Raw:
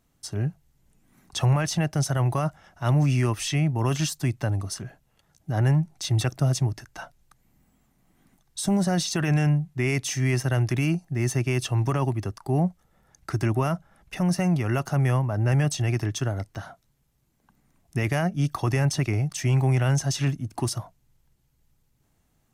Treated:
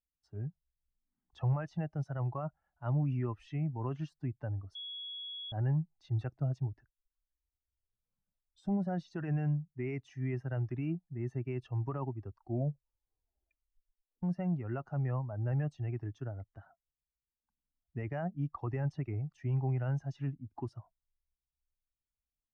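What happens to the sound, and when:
4.75–5.52 bleep 3350 Hz -16 dBFS
6.9 tape start 1.80 s
12.34 tape stop 1.89 s
whole clip: per-bin expansion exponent 1.5; LPF 1400 Hz 12 dB/oct; gain -8.5 dB

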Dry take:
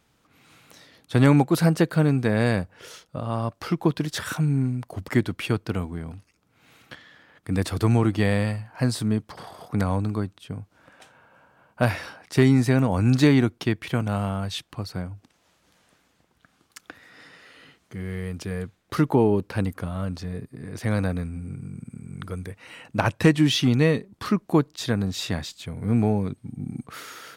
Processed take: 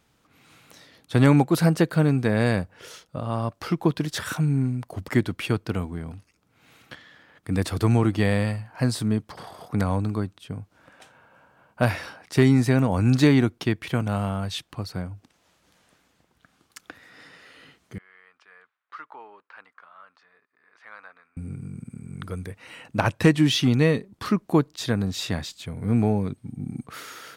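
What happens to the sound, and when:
17.98–21.37 ladder band-pass 1500 Hz, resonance 40%

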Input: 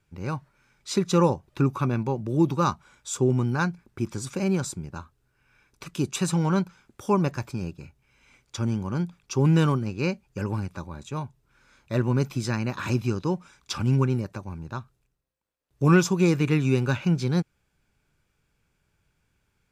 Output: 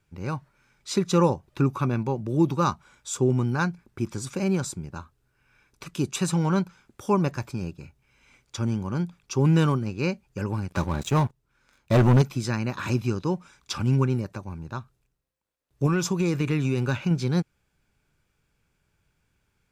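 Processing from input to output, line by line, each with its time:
10.69–12.22 sample leveller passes 3
15.86–17.11 compressor, threshold -19 dBFS

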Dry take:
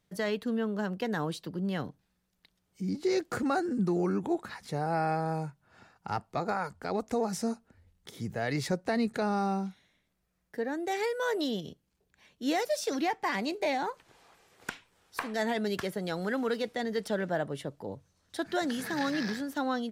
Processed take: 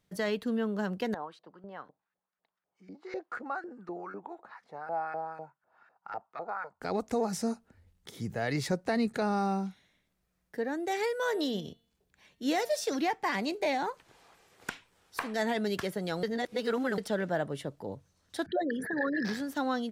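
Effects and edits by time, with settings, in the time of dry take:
1.14–6.81 LFO band-pass saw up 4 Hz 560–1700 Hz
11.22–12.87 de-hum 229.2 Hz, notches 19
16.23–16.98 reverse
18.46–19.25 formant sharpening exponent 3

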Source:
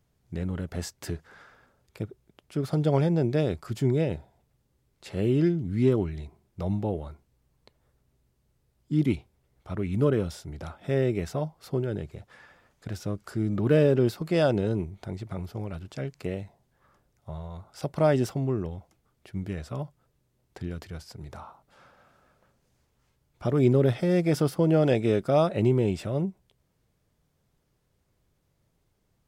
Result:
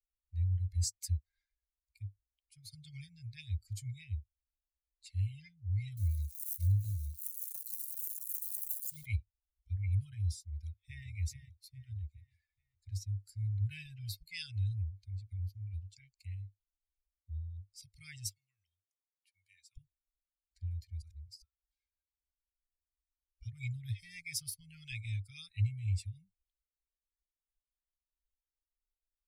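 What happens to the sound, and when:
5.97–9.05 switching spikes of -30 dBFS
10.45–11.07 echo throw 0.42 s, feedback 60%, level -6 dB
18.27–19.77 HPF 380 Hz
21.02–21.42 reverse
whole clip: per-bin expansion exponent 2; Chebyshev band-stop 100–2200 Hz, order 5; bell 3100 Hz -14.5 dB 0.84 oct; gain +8.5 dB

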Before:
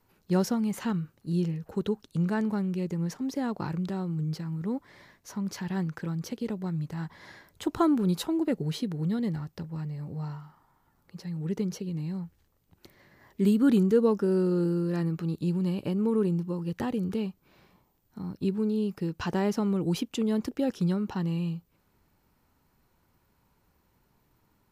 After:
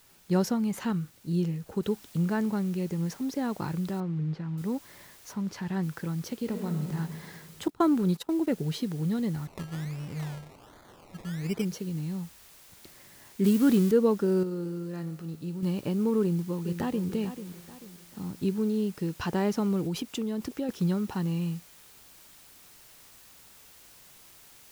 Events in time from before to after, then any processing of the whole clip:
1.83 noise floor step -60 dB -54 dB
4–4.58 LPF 2400 Hz
5.32–5.82 high shelf 5200 Hz -> 7500 Hz -11 dB
6.4–6.95 reverb throw, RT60 2.2 s, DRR 4.5 dB
7.68–8.47 gate -33 dBFS, range -21 dB
9.46–11.65 decimation with a swept rate 23×, swing 60% 1.3 Hz
13.44–13.91 switching spikes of -24 dBFS
14.43–15.63 resonator 53 Hz, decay 1.6 s
16.21–17.08 echo throw 0.44 s, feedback 40%, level -11 dB
19.81–20.69 compressor 5:1, threshold -27 dBFS

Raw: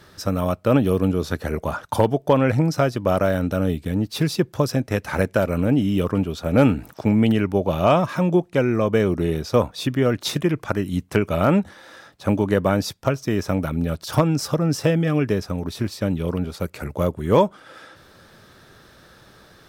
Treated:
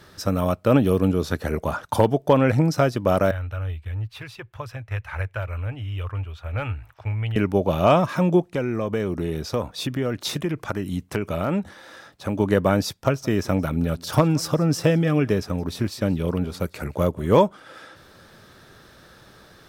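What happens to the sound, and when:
3.31–7.36 EQ curve 110 Hz 0 dB, 180 Hz -30 dB, 1000 Hz -7 dB, 2600 Hz -4 dB, 5100 Hz -18 dB
8.52–12.4 compressor 2:1, threshold -24 dBFS
12.95–17.4 echo 0.174 s -23 dB

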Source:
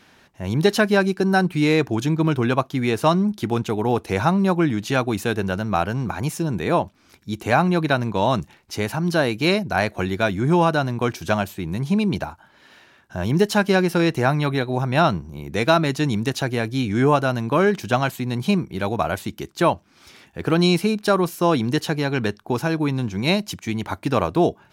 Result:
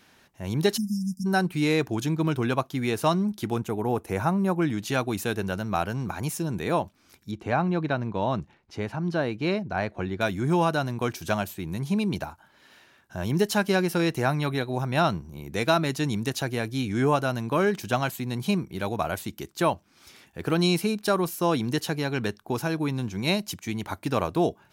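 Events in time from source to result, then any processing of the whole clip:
0.77–1.26 spectral delete 240–4900 Hz
3.56–4.62 bell 4100 Hz -10 dB 1.3 oct
7.31–10.21 tape spacing loss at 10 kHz 22 dB
whole clip: high shelf 7600 Hz +8.5 dB; gain -5.5 dB

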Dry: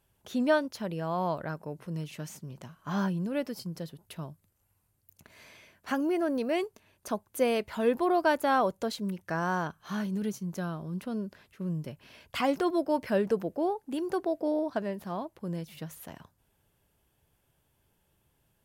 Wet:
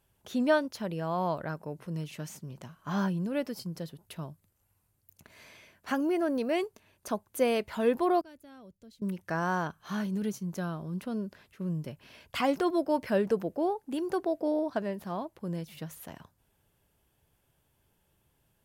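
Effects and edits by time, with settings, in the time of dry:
8.21–9.02 passive tone stack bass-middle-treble 10-0-1

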